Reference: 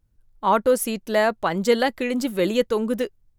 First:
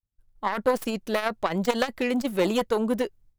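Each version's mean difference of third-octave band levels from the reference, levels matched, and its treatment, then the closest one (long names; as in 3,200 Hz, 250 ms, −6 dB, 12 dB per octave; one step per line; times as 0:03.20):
4.0 dB: stylus tracing distortion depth 0.14 ms
downward expander −50 dBFS
saturating transformer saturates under 770 Hz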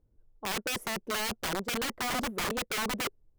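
14.5 dB: drawn EQ curve 170 Hz 0 dB, 430 Hz +10 dB, 4,300 Hz −18 dB
reversed playback
downward compressor 12 to 1, threshold −20 dBFS, peak gain reduction 16 dB
reversed playback
wrap-around overflow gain 23 dB
level −3.5 dB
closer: first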